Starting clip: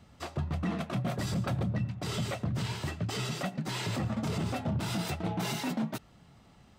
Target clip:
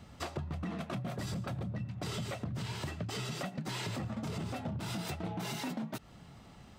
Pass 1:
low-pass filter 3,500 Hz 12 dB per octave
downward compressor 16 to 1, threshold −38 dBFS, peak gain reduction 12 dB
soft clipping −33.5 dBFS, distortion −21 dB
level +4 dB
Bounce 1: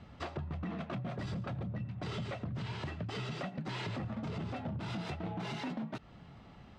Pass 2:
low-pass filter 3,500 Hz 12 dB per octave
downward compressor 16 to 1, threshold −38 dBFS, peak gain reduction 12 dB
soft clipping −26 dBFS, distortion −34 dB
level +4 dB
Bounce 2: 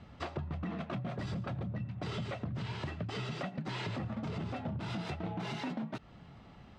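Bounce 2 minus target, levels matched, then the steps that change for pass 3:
4,000 Hz band −2.5 dB
remove: low-pass filter 3,500 Hz 12 dB per octave

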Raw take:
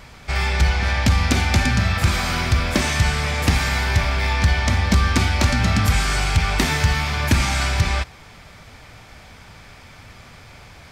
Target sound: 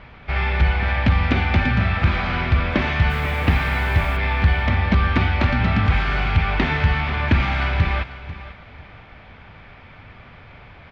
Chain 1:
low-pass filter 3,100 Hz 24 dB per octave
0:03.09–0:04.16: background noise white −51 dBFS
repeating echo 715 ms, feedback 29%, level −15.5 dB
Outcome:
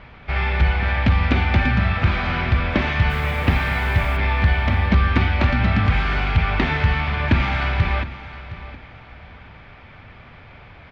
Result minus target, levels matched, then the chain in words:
echo 222 ms late
low-pass filter 3,100 Hz 24 dB per octave
0:03.09–0:04.16: background noise white −51 dBFS
repeating echo 493 ms, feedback 29%, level −15.5 dB

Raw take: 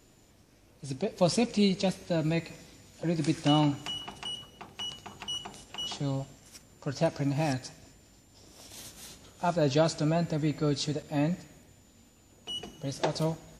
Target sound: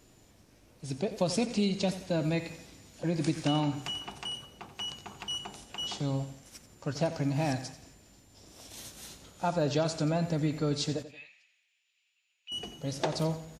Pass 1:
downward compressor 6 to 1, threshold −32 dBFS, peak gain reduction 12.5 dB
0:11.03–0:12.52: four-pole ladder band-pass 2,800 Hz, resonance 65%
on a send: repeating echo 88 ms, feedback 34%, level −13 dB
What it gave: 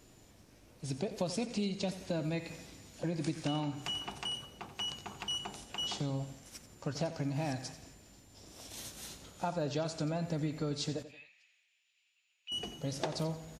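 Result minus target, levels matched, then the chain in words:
downward compressor: peak gain reduction +6.5 dB
downward compressor 6 to 1, threshold −24 dBFS, peak gain reduction 6 dB
0:11.03–0:12.52: four-pole ladder band-pass 2,800 Hz, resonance 65%
on a send: repeating echo 88 ms, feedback 34%, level −13 dB

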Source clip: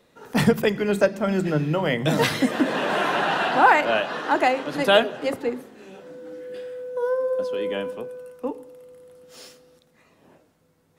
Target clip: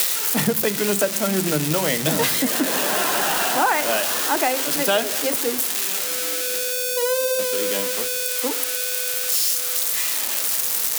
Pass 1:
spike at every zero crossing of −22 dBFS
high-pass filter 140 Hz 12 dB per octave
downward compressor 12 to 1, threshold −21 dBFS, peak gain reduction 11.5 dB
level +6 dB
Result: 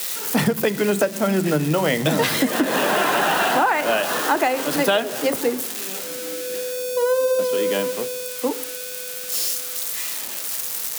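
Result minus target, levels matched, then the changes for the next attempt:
spike at every zero crossing: distortion −11 dB
change: spike at every zero crossing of −10.5 dBFS

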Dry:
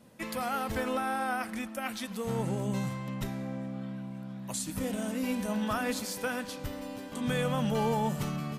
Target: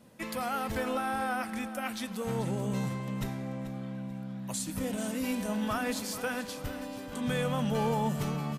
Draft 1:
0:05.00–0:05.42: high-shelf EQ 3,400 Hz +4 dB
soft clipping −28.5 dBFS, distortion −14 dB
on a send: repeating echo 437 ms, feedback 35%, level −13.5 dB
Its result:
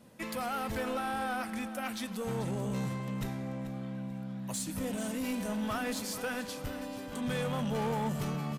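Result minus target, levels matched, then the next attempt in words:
soft clipping: distortion +13 dB
0:05.00–0:05.42: high-shelf EQ 3,400 Hz +4 dB
soft clipping −19.5 dBFS, distortion −27 dB
on a send: repeating echo 437 ms, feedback 35%, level −13.5 dB

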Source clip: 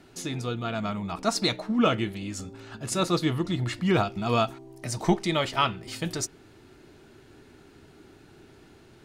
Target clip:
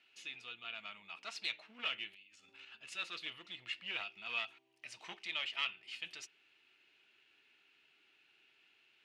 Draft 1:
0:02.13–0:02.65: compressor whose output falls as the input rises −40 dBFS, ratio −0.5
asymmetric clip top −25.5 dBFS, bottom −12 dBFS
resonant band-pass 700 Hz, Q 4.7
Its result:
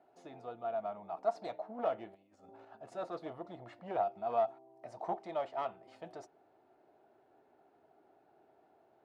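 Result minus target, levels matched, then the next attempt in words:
500 Hz band +19.0 dB
0:02.13–0:02.65: compressor whose output falls as the input rises −40 dBFS, ratio −0.5
asymmetric clip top −25.5 dBFS, bottom −12 dBFS
resonant band-pass 2,700 Hz, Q 4.7

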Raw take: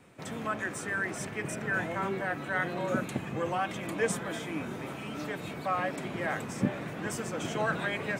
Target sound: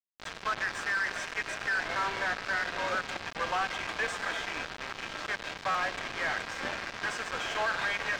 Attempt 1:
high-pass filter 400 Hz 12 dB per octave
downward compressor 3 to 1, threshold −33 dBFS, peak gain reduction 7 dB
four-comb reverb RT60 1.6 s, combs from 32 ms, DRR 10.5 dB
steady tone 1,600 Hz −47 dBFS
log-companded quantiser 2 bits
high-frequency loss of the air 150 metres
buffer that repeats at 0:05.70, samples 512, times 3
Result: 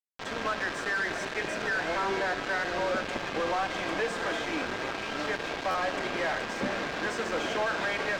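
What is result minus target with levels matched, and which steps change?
500 Hz band +6.0 dB
change: high-pass filter 1,000 Hz 12 dB per octave

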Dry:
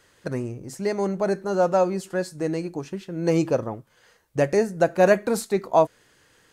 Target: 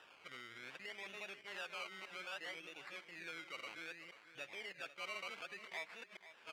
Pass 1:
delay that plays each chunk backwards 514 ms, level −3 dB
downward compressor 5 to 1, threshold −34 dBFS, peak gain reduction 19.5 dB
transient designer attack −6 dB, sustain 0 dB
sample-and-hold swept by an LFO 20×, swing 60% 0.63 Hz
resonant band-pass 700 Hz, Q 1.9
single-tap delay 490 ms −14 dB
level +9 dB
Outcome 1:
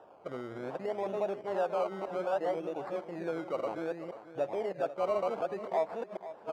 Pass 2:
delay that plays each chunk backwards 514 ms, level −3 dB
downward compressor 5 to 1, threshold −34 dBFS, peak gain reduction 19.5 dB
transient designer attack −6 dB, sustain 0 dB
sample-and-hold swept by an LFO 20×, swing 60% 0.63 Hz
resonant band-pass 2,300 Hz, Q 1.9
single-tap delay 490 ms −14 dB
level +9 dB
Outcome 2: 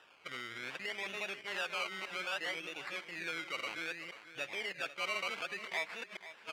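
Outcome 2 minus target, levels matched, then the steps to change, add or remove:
downward compressor: peak gain reduction −9 dB
change: downward compressor 5 to 1, threshold −45 dBFS, peak gain reduction 28 dB

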